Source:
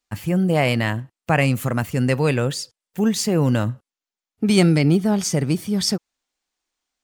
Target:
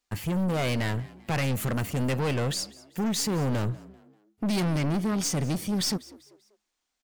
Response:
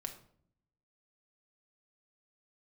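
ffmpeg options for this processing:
-filter_complex "[0:a]aeval=exprs='(tanh(15.8*val(0)+0.25)-tanh(0.25))/15.8':c=same,asplit=2[s0][s1];[s1]asplit=3[s2][s3][s4];[s2]adelay=195,afreqshift=69,volume=0.0891[s5];[s3]adelay=390,afreqshift=138,volume=0.0347[s6];[s4]adelay=585,afreqshift=207,volume=0.0135[s7];[s5][s6][s7]amix=inputs=3:normalize=0[s8];[s0][s8]amix=inputs=2:normalize=0"

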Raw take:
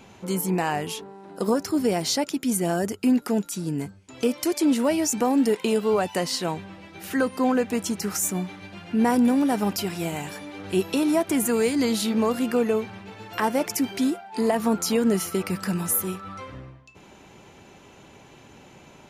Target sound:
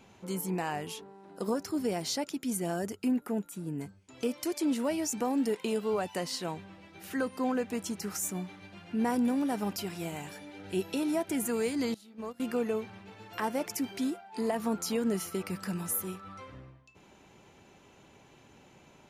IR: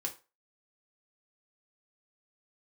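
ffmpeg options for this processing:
-filter_complex "[0:a]asettb=1/sr,asplit=3[s0][s1][s2];[s0]atrim=end=3.084[s3];[s1]atrim=start=3.08:end=3.81,asetpts=PTS-STARTPTS,afade=t=in:d=0.004:c=qsin,afade=t=out:st=0.726:d=0.004:c=qsin,equalizer=f=5000:w=1.1:g=-13[s4];[s2]atrim=start=3.806[s5];[s3][s4]acrossfade=d=0.004:c1=hsin:c2=qsin[s6];[s6][s5]acrossfade=d=0.004:c1=qsin:c2=hsin,asettb=1/sr,asplit=3[s7][s8][s9];[s7]atrim=end=10.324[s10];[s8]atrim=start=10.32:end=11.41,asetpts=PTS-STARTPTS,afade=t=in:d=0.004:c=qsin,afade=t=out:st=1.086:d=0.004:c=qsin,asuperstop=centerf=1100:order=12:qfactor=5.6[s11];[s9]atrim=start=11.406[s12];[s10][s11]acrossfade=d=0.004:c1=hsin:c2=qsin[s13];[s13][s12]acrossfade=d=0.004:c1=qsin:c2=hsin,asettb=1/sr,asplit=3[s14][s15][s16];[s14]atrim=end=11.944[s17];[s15]atrim=start=11.94:end=12.4,asetpts=PTS-STARTPTS,afade=t=in:d=0.004:c=qsin,afade=t=out:st=0.456:d=0.004:c=qsin,agate=range=0.0891:threshold=0.112:ratio=16:detection=peak[s18];[s16]atrim=start=12.396[s19];[s17][s18]acrossfade=d=0.004:c1=hsin:c2=qsin[s20];[s20][s19]acrossfade=d=0.004:c1=qsin:c2=hsin,volume=0.376"

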